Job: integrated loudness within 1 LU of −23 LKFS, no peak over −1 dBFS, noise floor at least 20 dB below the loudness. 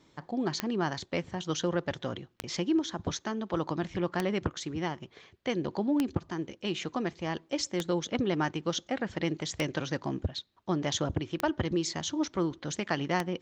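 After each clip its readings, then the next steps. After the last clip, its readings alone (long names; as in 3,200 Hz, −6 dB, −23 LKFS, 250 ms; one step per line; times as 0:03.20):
number of clicks 8; integrated loudness −32.5 LKFS; sample peak −12.0 dBFS; target loudness −23.0 LKFS
→ click removal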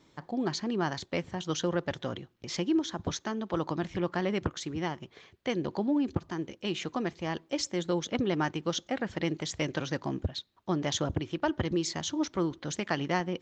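number of clicks 0; integrated loudness −32.5 LKFS; sample peak −14.0 dBFS; target loudness −23.0 LKFS
→ level +9.5 dB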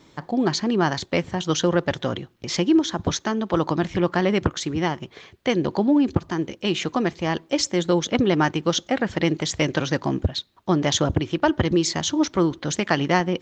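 integrated loudness −23.0 LKFS; sample peak −4.5 dBFS; background noise floor −55 dBFS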